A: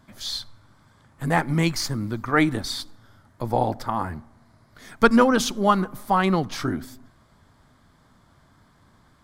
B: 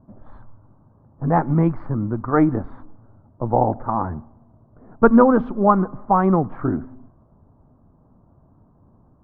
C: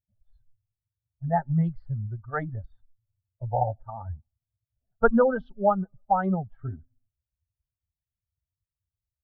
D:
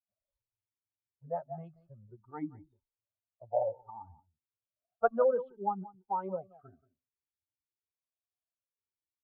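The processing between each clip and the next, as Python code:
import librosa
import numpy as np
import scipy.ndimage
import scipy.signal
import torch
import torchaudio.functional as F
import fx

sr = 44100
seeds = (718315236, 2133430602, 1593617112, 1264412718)

y1 = fx.env_lowpass(x, sr, base_hz=690.0, full_db=-16.5)
y1 = scipy.signal.sosfilt(scipy.signal.butter(4, 1200.0, 'lowpass', fs=sr, output='sos'), y1)
y1 = F.gain(torch.from_numpy(y1), 4.5).numpy()
y2 = fx.bin_expand(y1, sr, power=2.0)
y2 = fx.fixed_phaser(y2, sr, hz=1600.0, stages=8)
y3 = y2 + 10.0 ** (-20.0 / 20.0) * np.pad(y2, (int(178 * sr / 1000.0), 0))[:len(y2)]
y3 = fx.vowel_sweep(y3, sr, vowels='a-u', hz=0.6)
y3 = F.gain(torch.from_numpy(y3), 4.0).numpy()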